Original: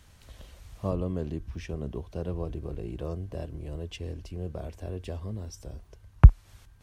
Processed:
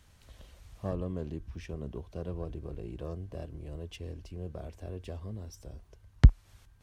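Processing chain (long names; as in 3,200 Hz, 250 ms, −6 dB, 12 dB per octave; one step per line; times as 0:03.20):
phase distortion by the signal itself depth 0.73 ms
level −4.5 dB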